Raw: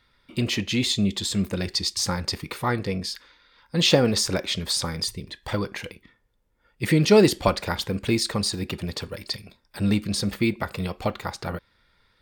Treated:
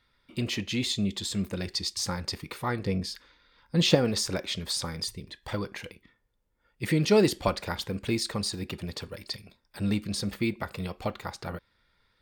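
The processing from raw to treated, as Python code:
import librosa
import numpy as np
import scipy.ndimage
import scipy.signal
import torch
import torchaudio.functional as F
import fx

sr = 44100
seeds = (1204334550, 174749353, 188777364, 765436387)

y = fx.low_shelf(x, sr, hz=420.0, db=6.5, at=(2.83, 3.95))
y = y * librosa.db_to_amplitude(-5.5)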